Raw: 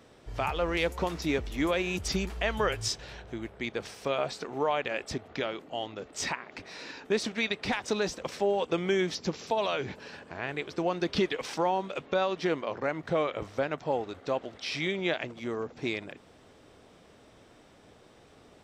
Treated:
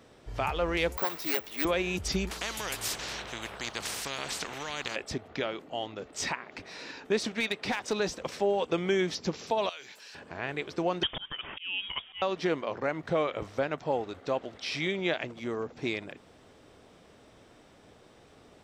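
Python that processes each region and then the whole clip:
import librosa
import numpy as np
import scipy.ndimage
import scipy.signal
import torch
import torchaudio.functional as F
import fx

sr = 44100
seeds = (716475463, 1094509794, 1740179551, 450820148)

y = fx.chain(x, sr, fx.self_delay(depth_ms=0.24),
    fx.weighting(curve='A'),
    fx.resample_bad(factor=2, down='filtered', up='zero_stuff'), at=(0.97, 1.65))
y = fx.chain(y, sr, fx.bass_treble(bass_db=-6, treble_db=-2),
    fx.spectral_comp(ratio=4.0), at=(2.31, 4.96))
y = fx.chain(y, sr, fx.highpass(hz=150.0, slope=6),
    fx.overload_stage(gain_db=21.5), at=(7.4, 8.0))
y = fx.chain(y, sr, fx.differentiator(),
    fx.env_flatten(amount_pct=50), at=(9.69, 10.15))
y = fx.chain(y, sr, fx.freq_invert(carrier_hz=3500),
    fx.auto_swell(attack_ms=310.0), at=(11.03, 12.22))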